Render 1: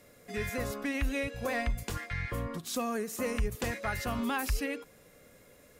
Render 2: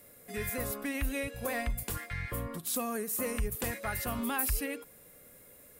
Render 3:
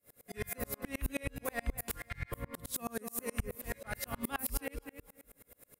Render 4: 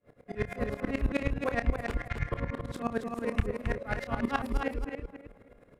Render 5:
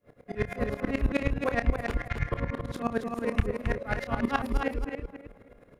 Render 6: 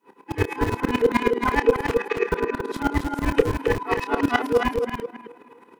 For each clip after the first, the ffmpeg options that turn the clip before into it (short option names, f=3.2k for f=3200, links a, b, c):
-af "aexciter=amount=3.1:drive=7.4:freq=8.5k,volume=-2dB"
-filter_complex "[0:a]asplit=2[a][b];[b]adelay=247,lowpass=f=2.6k:p=1,volume=-9dB,asplit=2[c][d];[d]adelay=247,lowpass=f=2.6k:p=1,volume=0.33,asplit=2[e][f];[f]adelay=247,lowpass=f=2.6k:p=1,volume=0.33,asplit=2[g][h];[h]adelay=247,lowpass=f=2.6k:p=1,volume=0.33[i];[a][c][e][g][i]amix=inputs=5:normalize=0,aeval=exprs='val(0)*pow(10,-34*if(lt(mod(-9.4*n/s,1),2*abs(-9.4)/1000),1-mod(-9.4*n/s,1)/(2*abs(-9.4)/1000),(mod(-9.4*n/s,1)-2*abs(-9.4)/1000)/(1-2*abs(-9.4)/1000))/20)':c=same,volume=3.5dB"
-filter_complex "[0:a]adynamicsmooth=sensitivity=3:basefreq=1.8k,asplit=2[a][b];[b]aecho=0:1:29.15|271.1:0.282|0.501[c];[a][c]amix=inputs=2:normalize=0,volume=8dB"
-af "bandreject=f=7.9k:w=9.8,volume=2.5dB"
-filter_complex "[0:a]afftfilt=real='real(if(between(b,1,1008),(2*floor((b-1)/24)+1)*24-b,b),0)':imag='imag(if(between(b,1,1008),(2*floor((b-1)/24)+1)*24-b,b),0)*if(between(b,1,1008),-1,1)':win_size=2048:overlap=0.75,acrossover=split=190[a][b];[a]acrusher=bits=5:mix=0:aa=0.000001[c];[c][b]amix=inputs=2:normalize=0,volume=6.5dB"